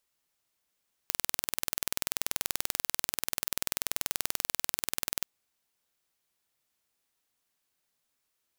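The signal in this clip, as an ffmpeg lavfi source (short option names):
-f lavfi -i "aevalsrc='0.841*eq(mod(n,2141),0)':d=4.17:s=44100"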